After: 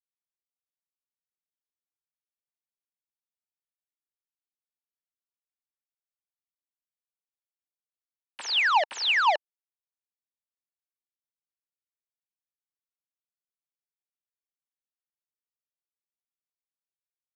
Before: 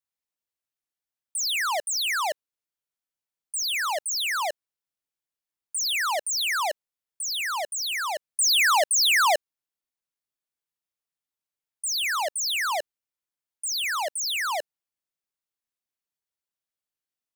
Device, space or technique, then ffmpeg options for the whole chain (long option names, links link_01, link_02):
hand-held game console: -af "acrusher=bits=3:mix=0:aa=0.000001,highpass=420,equalizer=frequency=890:width_type=q:width=4:gain=9,equalizer=frequency=1700:width_type=q:width=4:gain=4,equalizer=frequency=2800:width_type=q:width=4:gain=5,lowpass=frequency=4500:width=0.5412,lowpass=frequency=4500:width=1.3066,volume=-8dB"